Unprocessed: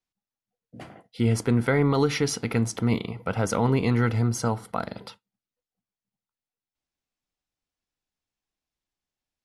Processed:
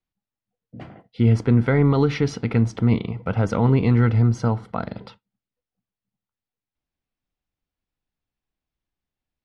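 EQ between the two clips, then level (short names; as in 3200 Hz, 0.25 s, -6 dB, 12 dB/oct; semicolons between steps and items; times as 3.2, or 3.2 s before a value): LPF 3800 Hz 12 dB/oct; low shelf 250 Hz +8.5 dB; 0.0 dB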